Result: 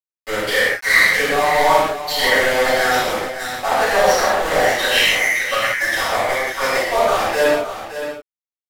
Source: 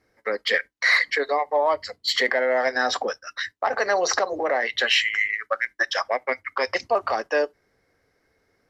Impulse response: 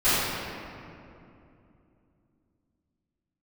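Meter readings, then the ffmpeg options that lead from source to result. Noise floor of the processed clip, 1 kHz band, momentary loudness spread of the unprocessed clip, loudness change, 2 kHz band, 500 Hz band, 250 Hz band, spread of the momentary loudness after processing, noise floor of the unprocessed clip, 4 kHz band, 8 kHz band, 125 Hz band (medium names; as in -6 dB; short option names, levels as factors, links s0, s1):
under -85 dBFS, +8.0 dB, 8 LU, +7.0 dB, +7.0 dB, +6.5 dB, +9.0 dB, 10 LU, -71 dBFS, +6.0 dB, +9.0 dB, no reading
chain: -filter_complex "[0:a]aeval=exprs='val(0)*gte(abs(val(0)),0.0794)':c=same,aecho=1:1:568:0.299[s0];[1:a]atrim=start_sample=2205,atrim=end_sample=6615,asetrate=32634,aresample=44100[s1];[s0][s1]afir=irnorm=-1:irlink=0,volume=0.282"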